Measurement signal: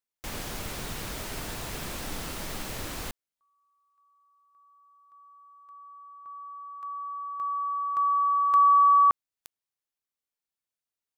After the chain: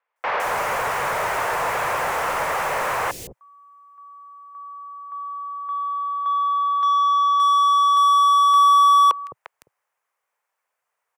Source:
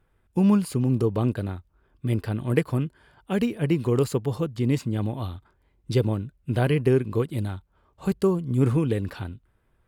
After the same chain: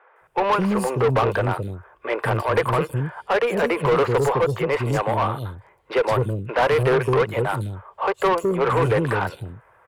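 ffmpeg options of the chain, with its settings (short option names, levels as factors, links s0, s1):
-filter_complex "[0:a]equalizer=f=125:t=o:w=1:g=5,equalizer=f=250:t=o:w=1:g=-11,equalizer=f=500:t=o:w=1:g=10,equalizer=f=1000:t=o:w=1:g=9,equalizer=f=2000:t=o:w=1:g=5,equalizer=f=4000:t=o:w=1:g=-8,acrossover=split=340|3800[s0][s1][s2];[s2]adelay=160[s3];[s0]adelay=210[s4];[s4][s1][s3]amix=inputs=3:normalize=0,asplit=2[s5][s6];[s6]highpass=f=720:p=1,volume=22.4,asoftclip=type=tanh:threshold=0.668[s7];[s5][s7]amix=inputs=2:normalize=0,lowpass=f=4200:p=1,volume=0.501,acrossover=split=130|2600[s8][s9][s10];[s10]asoftclip=type=tanh:threshold=0.0708[s11];[s8][s9][s11]amix=inputs=3:normalize=0,volume=0.473"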